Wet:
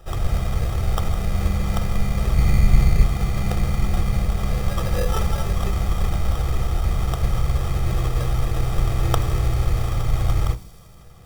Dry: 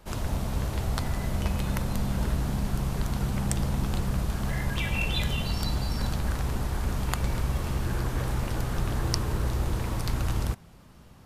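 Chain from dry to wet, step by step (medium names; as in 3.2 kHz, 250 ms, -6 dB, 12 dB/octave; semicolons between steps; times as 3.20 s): 2.37–3.05 s: bass shelf 280 Hz +7 dB; sample-rate reducer 2.2 kHz, jitter 0%; feedback echo behind a high-pass 79 ms, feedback 84%, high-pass 5.2 kHz, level -13 dB; reverberation RT60 0.40 s, pre-delay 3 ms, DRR 12 dB; trim +1.5 dB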